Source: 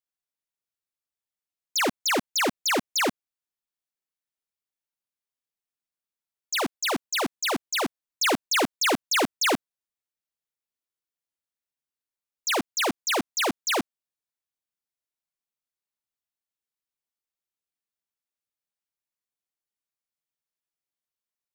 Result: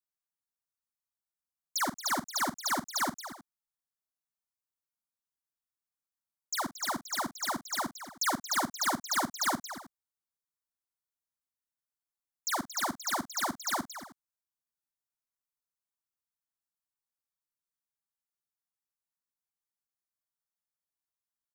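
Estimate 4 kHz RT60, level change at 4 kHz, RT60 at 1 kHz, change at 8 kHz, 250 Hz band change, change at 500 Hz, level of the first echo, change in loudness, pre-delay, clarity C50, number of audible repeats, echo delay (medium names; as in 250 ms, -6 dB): no reverb, -9.0 dB, no reverb, -4.5 dB, -8.0 dB, -12.0 dB, -14.0 dB, -6.5 dB, no reverb, no reverb, 3, 45 ms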